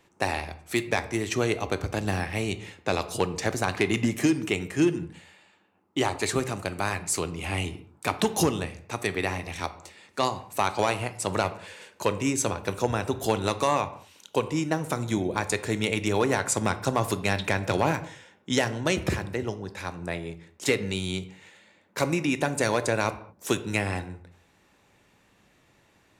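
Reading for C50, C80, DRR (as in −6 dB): 14.5 dB, 17.5 dB, 11.5 dB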